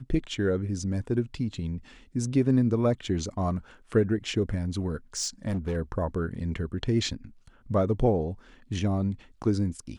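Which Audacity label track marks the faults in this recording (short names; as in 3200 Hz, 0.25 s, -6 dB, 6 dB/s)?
5.170000	5.770000	clipped -25 dBFS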